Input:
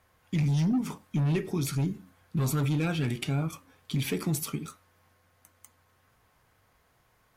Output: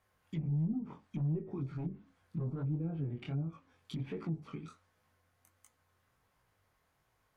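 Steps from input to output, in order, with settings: chorus 1.4 Hz, delay 18 ms, depth 6.8 ms; treble ducked by the level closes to 460 Hz, closed at -26 dBFS; gain -6 dB

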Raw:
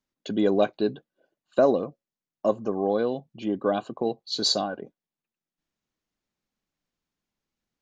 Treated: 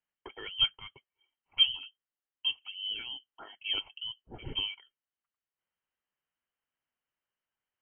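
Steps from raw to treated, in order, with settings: rippled Chebyshev high-pass 610 Hz, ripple 6 dB; inverted band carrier 3800 Hz

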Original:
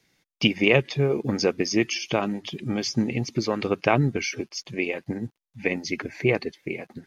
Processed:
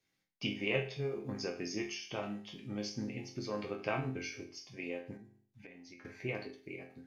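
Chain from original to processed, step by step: resonator bank F2 minor, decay 0.44 s; 5.17–6.05 compressor 5:1, threshold -52 dBFS, peak gain reduction 14.5 dB; ending taper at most 150 dB/s

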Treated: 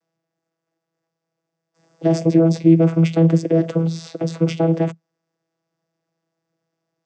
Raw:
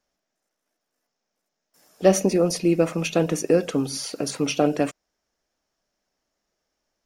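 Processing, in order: limiter -12 dBFS, peak gain reduction 8 dB; vocoder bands 16, saw 164 Hz; gain +8.5 dB

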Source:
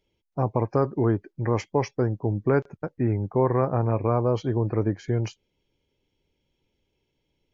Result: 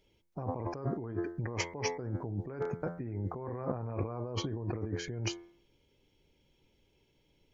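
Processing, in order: de-hum 86.08 Hz, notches 26; negative-ratio compressor -33 dBFS, ratio -1; gain -3.5 dB

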